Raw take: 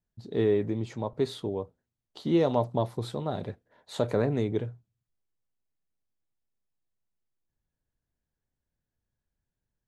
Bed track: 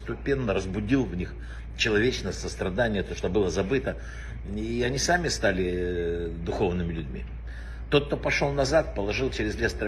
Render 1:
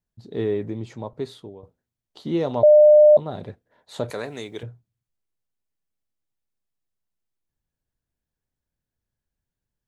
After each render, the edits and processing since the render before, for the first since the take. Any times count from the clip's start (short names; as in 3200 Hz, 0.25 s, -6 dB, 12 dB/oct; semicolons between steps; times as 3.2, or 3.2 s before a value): 0.8–1.63 fade out equal-power, to -14 dB; 2.63–3.17 bleep 602 Hz -8 dBFS; 4.1–4.63 tilt +4.5 dB/oct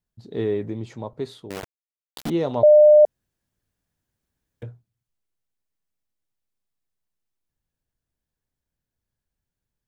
1.5–2.3 companded quantiser 2-bit; 3.05–4.62 room tone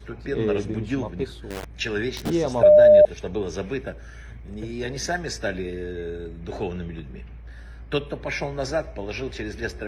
add bed track -3.5 dB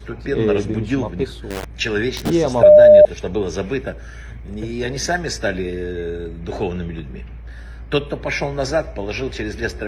gain +6 dB; limiter -2 dBFS, peak gain reduction 2 dB